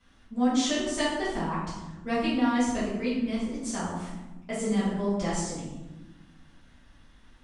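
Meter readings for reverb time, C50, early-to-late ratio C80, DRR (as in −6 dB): 1.1 s, 1.0 dB, 4.0 dB, −11.5 dB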